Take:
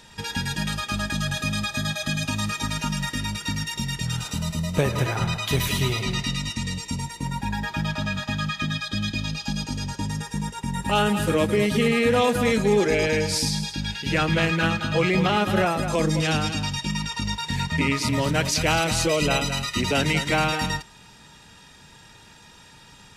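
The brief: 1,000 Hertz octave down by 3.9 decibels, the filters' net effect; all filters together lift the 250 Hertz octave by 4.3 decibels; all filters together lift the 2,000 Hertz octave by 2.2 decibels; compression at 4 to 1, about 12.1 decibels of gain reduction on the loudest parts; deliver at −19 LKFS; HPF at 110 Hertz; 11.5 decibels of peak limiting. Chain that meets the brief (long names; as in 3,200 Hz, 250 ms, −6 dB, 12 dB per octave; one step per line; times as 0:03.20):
high-pass filter 110 Hz
parametric band 250 Hz +6.5 dB
parametric band 1,000 Hz −7 dB
parametric band 2,000 Hz +4.5 dB
downward compressor 4 to 1, threshold −29 dBFS
level +16 dB
brickwall limiter −10.5 dBFS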